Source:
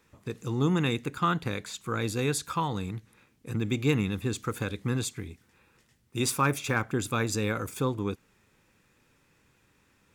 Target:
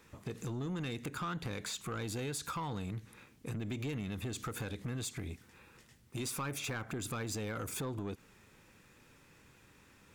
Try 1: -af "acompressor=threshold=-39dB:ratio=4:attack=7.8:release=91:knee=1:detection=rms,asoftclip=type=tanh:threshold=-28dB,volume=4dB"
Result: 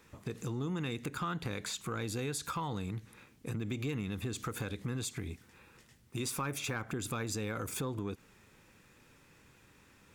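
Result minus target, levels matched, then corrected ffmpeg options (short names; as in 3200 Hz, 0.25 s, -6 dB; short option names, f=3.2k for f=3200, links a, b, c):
soft clip: distortion -12 dB
-af "acompressor=threshold=-39dB:ratio=4:attack=7.8:release=91:knee=1:detection=rms,asoftclip=type=tanh:threshold=-36dB,volume=4dB"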